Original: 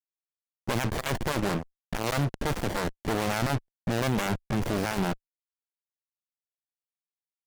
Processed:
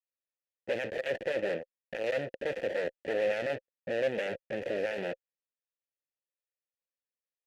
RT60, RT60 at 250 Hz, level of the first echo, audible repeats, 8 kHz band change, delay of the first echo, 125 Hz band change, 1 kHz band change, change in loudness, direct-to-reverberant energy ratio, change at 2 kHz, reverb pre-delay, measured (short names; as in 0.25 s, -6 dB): none, none, none, none, under -15 dB, none, -20.0 dB, -13.0 dB, -4.0 dB, none, -3.0 dB, none